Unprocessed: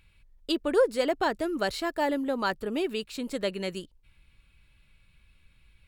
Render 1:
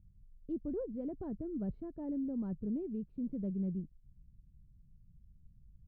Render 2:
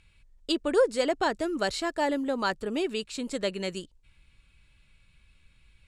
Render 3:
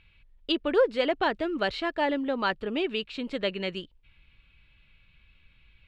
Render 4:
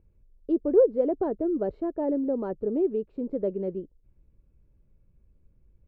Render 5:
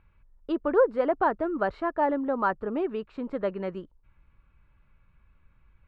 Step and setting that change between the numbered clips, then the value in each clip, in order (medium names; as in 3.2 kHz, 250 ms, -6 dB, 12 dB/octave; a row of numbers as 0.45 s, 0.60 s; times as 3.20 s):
resonant low-pass, frequency: 170 Hz, 7.9 kHz, 3.1 kHz, 450 Hz, 1.2 kHz